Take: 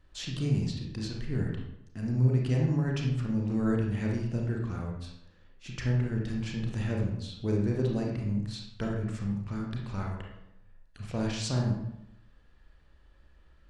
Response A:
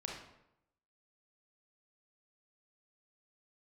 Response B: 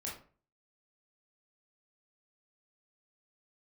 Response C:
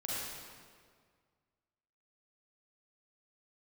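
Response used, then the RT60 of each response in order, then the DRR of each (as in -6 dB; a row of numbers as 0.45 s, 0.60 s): A; 0.85 s, 0.40 s, 1.9 s; -1.0 dB, -4.5 dB, -7.0 dB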